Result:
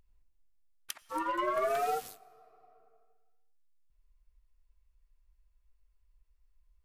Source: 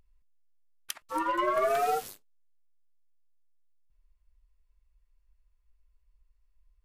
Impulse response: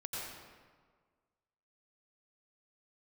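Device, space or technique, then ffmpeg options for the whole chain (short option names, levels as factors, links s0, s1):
ducked reverb: -filter_complex "[0:a]asplit=3[s0][s1][s2];[1:a]atrim=start_sample=2205[s3];[s1][s3]afir=irnorm=-1:irlink=0[s4];[s2]apad=whole_len=301695[s5];[s4][s5]sidechaincompress=threshold=0.00355:ratio=10:attack=36:release=555,volume=0.531[s6];[s0][s6]amix=inputs=2:normalize=0,volume=0.631"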